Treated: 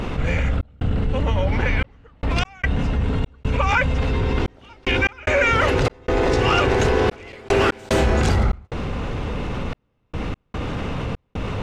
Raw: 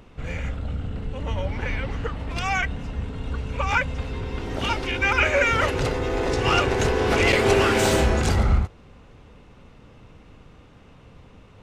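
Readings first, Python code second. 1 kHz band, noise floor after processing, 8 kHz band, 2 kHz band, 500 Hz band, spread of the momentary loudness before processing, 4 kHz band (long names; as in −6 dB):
+2.0 dB, −67 dBFS, −3.5 dB, +1.0 dB, +2.0 dB, 13 LU, +0.5 dB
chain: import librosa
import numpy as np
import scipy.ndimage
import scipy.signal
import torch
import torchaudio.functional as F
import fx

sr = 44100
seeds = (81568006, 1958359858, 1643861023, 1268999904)

y = fx.step_gate(x, sr, bpm=74, pattern='xxx.xxxxx..x.', floor_db=-60.0, edge_ms=4.5)
y = fx.high_shelf(y, sr, hz=7000.0, db=-9.0)
y = fx.env_flatten(y, sr, amount_pct=70)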